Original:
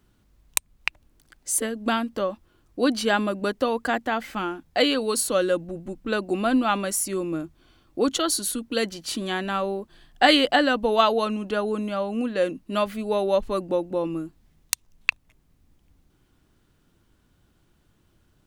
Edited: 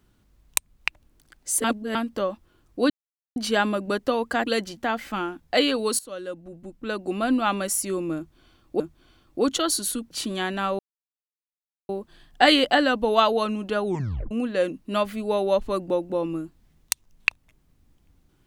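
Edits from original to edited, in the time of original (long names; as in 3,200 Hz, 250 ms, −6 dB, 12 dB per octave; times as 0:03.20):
0:01.64–0:01.95: reverse
0:02.90: splice in silence 0.46 s
0:05.22–0:06.80: fade in linear, from −18 dB
0:07.40–0:08.03: repeat, 2 plays
0:08.71–0:09.02: move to 0:04.00
0:09.70: splice in silence 1.10 s
0:11.66: tape stop 0.46 s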